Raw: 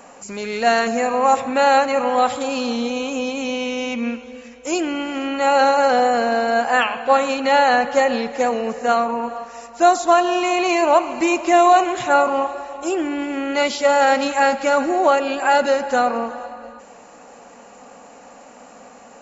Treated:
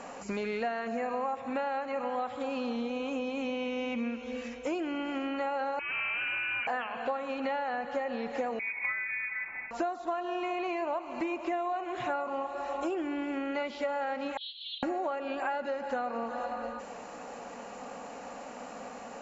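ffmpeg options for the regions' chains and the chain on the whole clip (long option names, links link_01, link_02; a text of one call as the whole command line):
ffmpeg -i in.wav -filter_complex "[0:a]asettb=1/sr,asplit=3[link_01][link_02][link_03];[link_01]atrim=end=5.794[link_04];[link_02]atrim=start=5.79:end=6.67,asetpts=PTS-STARTPTS,afade=type=in:duration=0.004:curve=qsin,afade=type=out:start_time=0.876:duration=0.004:curve=qsin,highpass=frequency=190:width=0.5412,highpass=frequency=190:width=1.3066,asoftclip=type=hard:threshold=-20.5dB,lowpass=frequency=2600:width_type=q:width=0.5098,lowpass=frequency=2600:width_type=q:width=0.6013,lowpass=frequency=2600:width_type=q:width=0.9,lowpass=frequency=2600:width_type=q:width=2.563,afreqshift=-3100[link_05];[link_03]atrim=start=6.666[link_06];[link_04][link_05]acrossfade=duration=0.004:curve1=hsin:curve2=qsin[link_07];[link_07][link_06]acrossfade=duration=0.004:curve1=qsin:curve2=hsin,asettb=1/sr,asplit=3[link_08][link_09][link_10];[link_08]atrim=end=8.594[link_11];[link_09]atrim=start=8.59:end=9.71,asetpts=PTS-STARTPTS,afade=type=in:duration=0.004:curve=qsin,afade=type=out:start_time=1.116:duration=0.004:curve=qsin,equalizer=frequency=1200:width_type=o:width=1:gain=-9.5,lowpass=frequency=2300:width_type=q:width=0.5098,lowpass=frequency=2300:width_type=q:width=0.6013,lowpass=frequency=2300:width_type=q:width=0.9,lowpass=frequency=2300:width_type=q:width=2.563,afreqshift=-2700[link_12];[link_10]atrim=start=9.706[link_13];[link_11][link_12]acrossfade=duration=0.004:curve1=hsin:curve2=qsin[link_14];[link_14][link_13]acrossfade=duration=0.004:curve1=qsin:curve2=hsin,asettb=1/sr,asplit=3[link_15][link_16][link_17];[link_15]atrim=end=14.374[link_18];[link_16]atrim=start=14.37:end=14.83,asetpts=PTS-STARTPTS,afade=type=in:duration=0.004:curve=qsin,afade=type=out:start_time=0.456:duration=0.004:curve=qsin,aeval=exprs='0.596*sin(PI/2*1.78*val(0)/0.596)':channel_layout=same,asuperpass=centerf=3600:order=8:qfactor=3.6[link_19];[link_17]atrim=start=14.826[link_20];[link_18][link_19]acrossfade=duration=0.004:curve1=hsin:curve2=qsin[link_21];[link_21][link_20]acrossfade=duration=0.004:curve1=qsin:curve2=hsin,acrossover=split=3000[link_22][link_23];[link_23]acompressor=threshold=-45dB:ratio=4:attack=1:release=60[link_24];[link_22][link_24]amix=inputs=2:normalize=0,lowpass=6000,acompressor=threshold=-30dB:ratio=12" out.wav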